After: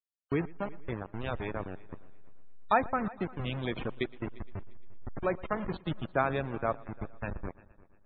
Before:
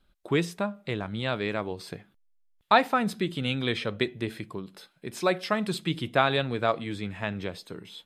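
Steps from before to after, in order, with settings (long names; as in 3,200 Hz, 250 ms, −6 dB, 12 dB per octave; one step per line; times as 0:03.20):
hold until the input has moved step −24.5 dBFS
treble cut that deepens with the level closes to 2,500 Hz, closed at −20 dBFS
spectral peaks only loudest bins 64
echo machine with several playback heads 116 ms, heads first and third, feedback 42%, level −22.5 dB
level −5 dB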